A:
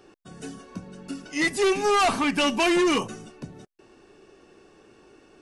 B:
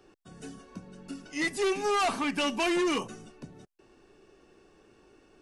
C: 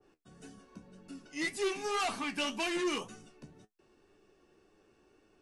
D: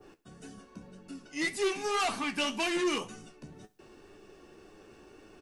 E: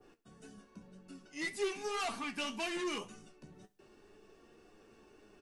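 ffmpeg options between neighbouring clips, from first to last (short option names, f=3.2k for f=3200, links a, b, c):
-filter_complex "[0:a]lowshelf=f=64:g=8,acrossover=split=160[a][b];[a]acompressor=threshold=-44dB:ratio=6[c];[c][b]amix=inputs=2:normalize=0,volume=-6dB"
-af "flanger=delay=9.3:depth=4.8:regen=55:speed=1.9:shape=sinusoidal,adynamicequalizer=threshold=0.00398:dfrequency=1700:dqfactor=0.7:tfrequency=1700:tqfactor=0.7:attack=5:release=100:ratio=0.375:range=2:mode=boostabove:tftype=highshelf,volume=-3dB"
-af "areverse,acompressor=mode=upward:threshold=-47dB:ratio=2.5,areverse,aecho=1:1:67|134|201:0.0794|0.0357|0.0161,volume=3dB"
-af "flanger=delay=4.1:depth=1.3:regen=70:speed=0.43:shape=triangular,volume=-2.5dB"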